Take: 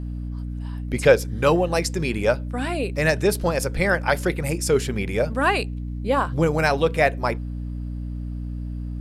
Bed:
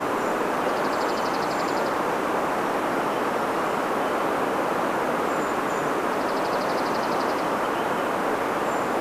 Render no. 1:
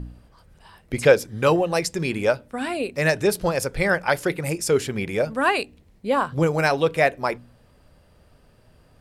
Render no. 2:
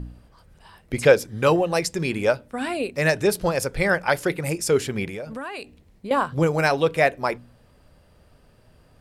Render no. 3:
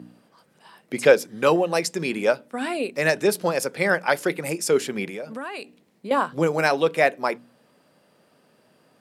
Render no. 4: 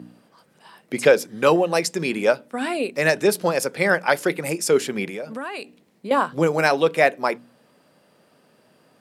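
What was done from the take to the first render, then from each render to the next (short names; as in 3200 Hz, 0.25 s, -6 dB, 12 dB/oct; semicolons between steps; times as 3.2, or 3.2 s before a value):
de-hum 60 Hz, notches 5
5.05–6.11 compressor 10:1, threshold -29 dBFS
HPF 180 Hz 24 dB/oct
gain +2 dB; limiter -3 dBFS, peak gain reduction 3 dB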